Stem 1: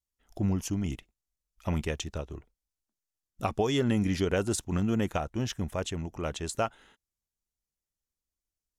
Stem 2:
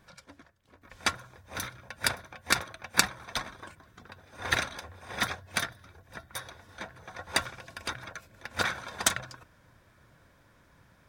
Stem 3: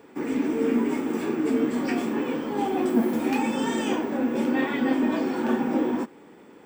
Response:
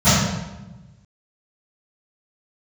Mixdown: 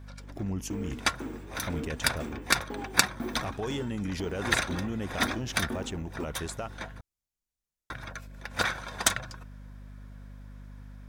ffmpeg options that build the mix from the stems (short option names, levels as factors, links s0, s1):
-filter_complex "[0:a]volume=0.841[s0];[1:a]aeval=exprs='val(0)+0.00562*(sin(2*PI*50*n/s)+sin(2*PI*2*50*n/s)/2+sin(2*PI*3*50*n/s)/3+sin(2*PI*4*50*n/s)/4+sin(2*PI*5*50*n/s)/5)':c=same,volume=1.12,asplit=3[s1][s2][s3];[s1]atrim=end=7.01,asetpts=PTS-STARTPTS,afade=t=out:st=7.006:d=0.004:c=hsin[s4];[s2]atrim=start=7.01:end=7.9,asetpts=PTS-STARTPTS,volume=0[s5];[s3]atrim=start=7.9,asetpts=PTS-STARTPTS,afade=t=in:d=0.004:c=hsin[s6];[s4][s5][s6]concat=n=3:v=0:a=1[s7];[2:a]aeval=exprs='val(0)*pow(10,-28*if(lt(mod(2*n/s,1),2*abs(2)/1000),1-mod(2*n/s,1)/(2*abs(2)/1000),(mod(2*n/s,1)-2*abs(2)/1000)/(1-2*abs(2)/1000))/20)':c=same,adelay=200,volume=0.473[s8];[s0][s8]amix=inputs=2:normalize=0,alimiter=level_in=1.12:limit=0.0631:level=0:latency=1:release=27,volume=0.891,volume=1[s9];[s7][s9]amix=inputs=2:normalize=0"